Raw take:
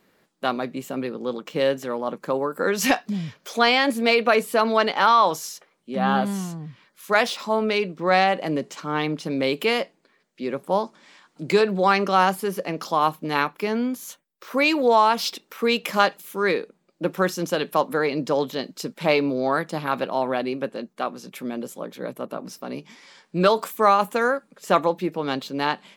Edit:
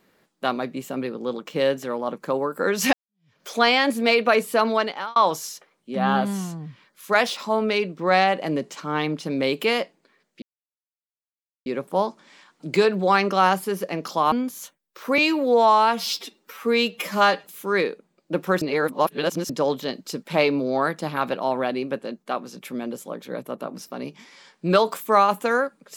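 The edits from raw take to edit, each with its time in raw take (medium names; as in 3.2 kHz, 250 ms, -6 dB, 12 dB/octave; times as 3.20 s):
2.93–3.41 s: fade in exponential
4.67–5.16 s: fade out
10.42 s: insert silence 1.24 s
13.08–13.78 s: delete
14.64–16.15 s: stretch 1.5×
17.32–18.20 s: reverse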